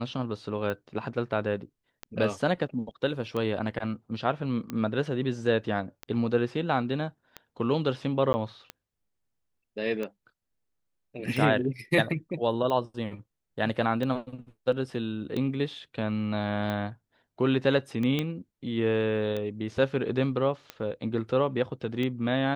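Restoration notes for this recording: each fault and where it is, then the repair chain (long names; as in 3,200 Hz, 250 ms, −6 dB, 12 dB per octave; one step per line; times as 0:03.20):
scratch tick 45 rpm −20 dBFS
0:08.33–0:08.34: drop-out 10 ms
0:18.19: click −15 dBFS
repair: click removal
repair the gap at 0:08.33, 10 ms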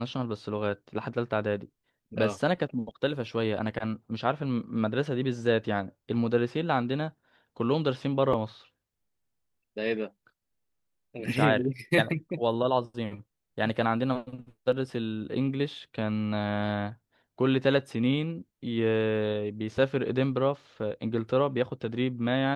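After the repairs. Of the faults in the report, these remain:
none of them is left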